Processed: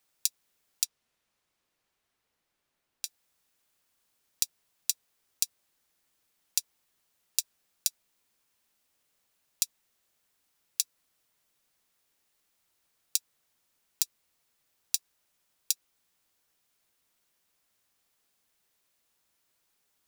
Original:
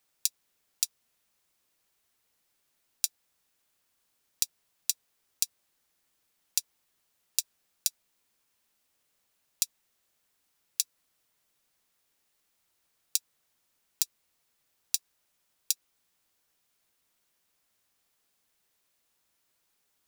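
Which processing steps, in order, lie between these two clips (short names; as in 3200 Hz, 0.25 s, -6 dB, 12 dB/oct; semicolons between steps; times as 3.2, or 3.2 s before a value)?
0.83–3.05 high shelf 7700 Hz -> 3800 Hz -11 dB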